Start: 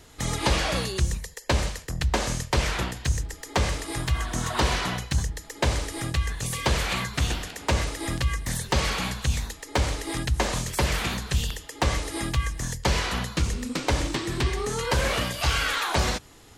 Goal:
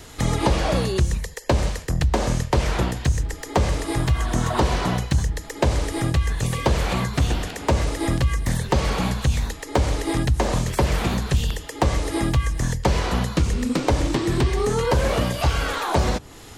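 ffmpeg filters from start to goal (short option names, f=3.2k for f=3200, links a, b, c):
-filter_complex "[0:a]acrossover=split=970|3800[a][b][c];[a]acompressor=threshold=-25dB:ratio=4[d];[b]acompressor=threshold=-44dB:ratio=4[e];[c]acompressor=threshold=-47dB:ratio=4[f];[d][e][f]amix=inputs=3:normalize=0,volume=9dB"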